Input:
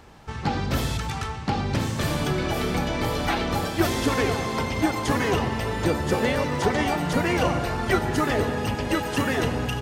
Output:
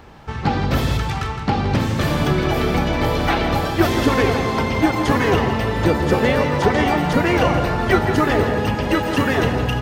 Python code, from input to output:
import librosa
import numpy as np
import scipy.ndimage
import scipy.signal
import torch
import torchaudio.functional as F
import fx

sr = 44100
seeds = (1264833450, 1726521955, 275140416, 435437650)

p1 = fx.peak_eq(x, sr, hz=8900.0, db=-8.5, octaves=1.5)
p2 = p1 + fx.echo_single(p1, sr, ms=164, db=-10.0, dry=0)
y = p2 * 10.0 ** (6.0 / 20.0)